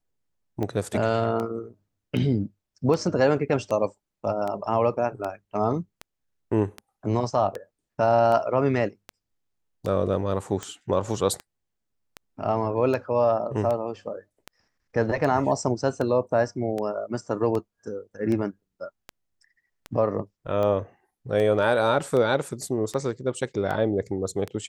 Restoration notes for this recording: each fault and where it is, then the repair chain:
tick 78 rpm -18 dBFS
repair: de-click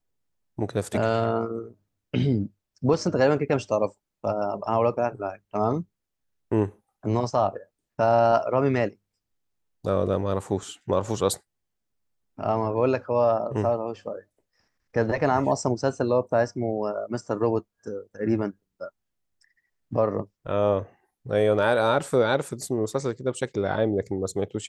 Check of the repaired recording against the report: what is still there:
nothing left

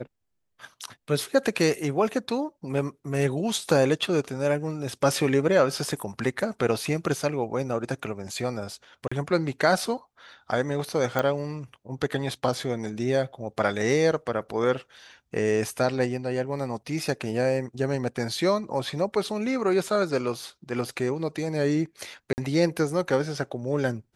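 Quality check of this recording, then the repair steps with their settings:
9.08–9.12 s: dropout 35 ms
11.19 s: pop -12 dBFS
22.33–22.38 s: dropout 49 ms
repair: de-click; interpolate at 9.08 s, 35 ms; interpolate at 22.33 s, 49 ms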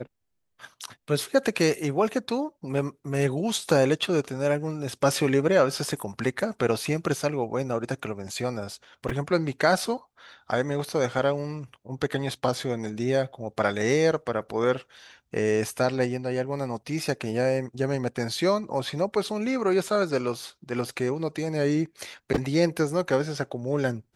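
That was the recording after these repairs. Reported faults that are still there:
nothing left

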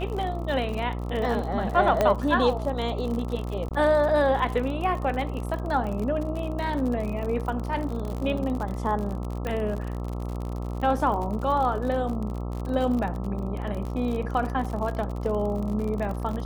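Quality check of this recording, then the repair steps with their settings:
buzz 60 Hz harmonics 22 -31 dBFS
crackle 54 per s -31 dBFS
2.01 s: pop -9 dBFS
3.69–3.71 s: dropout 18 ms
9.47 s: pop -18 dBFS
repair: de-click; de-hum 60 Hz, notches 22; interpolate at 3.69 s, 18 ms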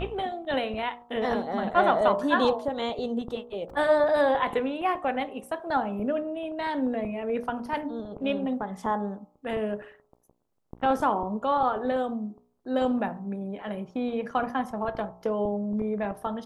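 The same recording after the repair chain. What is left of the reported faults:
nothing left

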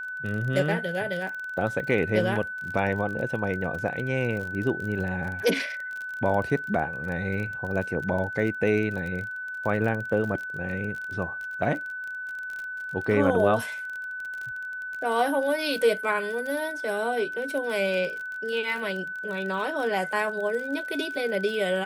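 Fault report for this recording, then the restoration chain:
crackle 32 per s -32 dBFS
whine 1.5 kHz -32 dBFS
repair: de-click; band-stop 1.5 kHz, Q 30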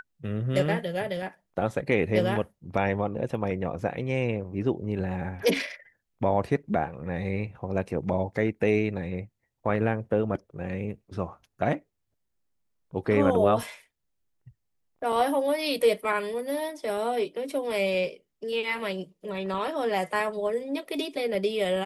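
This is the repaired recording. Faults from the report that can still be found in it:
nothing left

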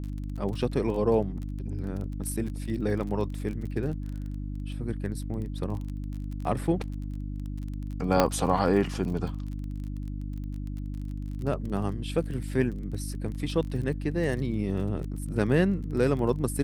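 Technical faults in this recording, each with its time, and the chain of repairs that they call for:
crackle 29 per s -35 dBFS
hum 50 Hz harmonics 6 -34 dBFS
8.20 s: pop -6 dBFS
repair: de-click; de-hum 50 Hz, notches 6

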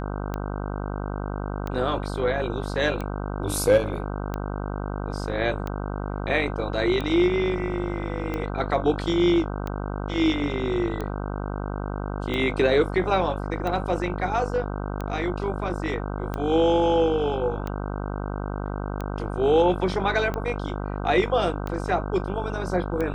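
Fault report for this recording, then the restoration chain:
buzz 50 Hz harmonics 31 -30 dBFS
tick 45 rpm -17 dBFS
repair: de-click; de-hum 50 Hz, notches 31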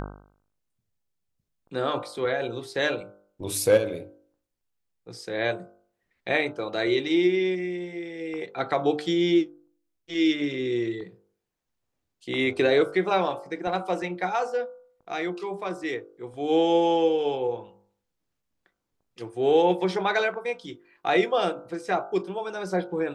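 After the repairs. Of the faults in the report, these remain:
nothing left

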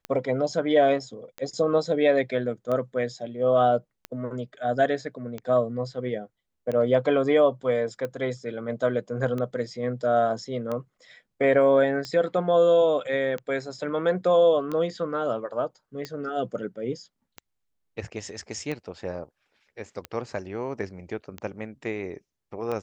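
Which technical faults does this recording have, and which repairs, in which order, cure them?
tick 45 rpm -19 dBFS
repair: de-click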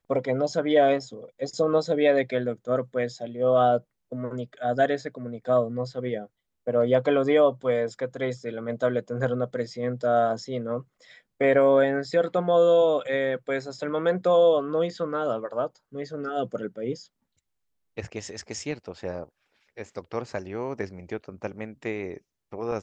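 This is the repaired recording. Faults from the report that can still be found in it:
nothing left

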